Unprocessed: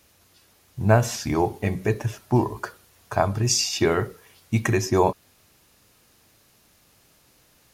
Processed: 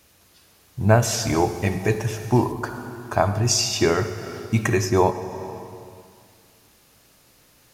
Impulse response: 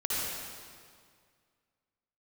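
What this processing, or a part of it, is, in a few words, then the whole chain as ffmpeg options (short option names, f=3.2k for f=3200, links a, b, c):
compressed reverb return: -filter_complex "[0:a]asplit=2[a][b];[1:a]atrim=start_sample=2205[c];[b][c]afir=irnorm=-1:irlink=0,acompressor=threshold=-16dB:ratio=6,volume=-11dB[d];[a][d]amix=inputs=2:normalize=0,asettb=1/sr,asplit=3[e][f][g];[e]atrim=end=1.024[h];[f]atrim=start=1.02:end=2.52,asetpts=PTS-STARTPTS,afade=t=in:d=0.004:c=qsin,afade=t=out:st=1.496:d=0.004:c=qsin,equalizer=f=7.2k:w=0.36:g=5.5[i];[g]atrim=start=2.516[j];[h][i]acrossfade=d=0.004:c1=hsin:c2=qsin[k];[k][j]acrossfade=d=0.004:c1=qsin:c2=hsin"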